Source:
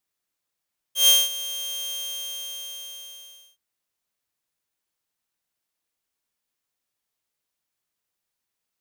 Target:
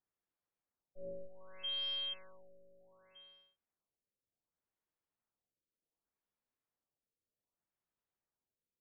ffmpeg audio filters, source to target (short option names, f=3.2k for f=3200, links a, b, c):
-af "adynamicsmooth=sensitivity=7:basefreq=1.8k,afftfilt=real='re*lt(b*sr/1024,570*pow(5500/570,0.5+0.5*sin(2*PI*0.66*pts/sr)))':imag='im*lt(b*sr/1024,570*pow(5500/570,0.5+0.5*sin(2*PI*0.66*pts/sr)))':win_size=1024:overlap=0.75,volume=-4dB"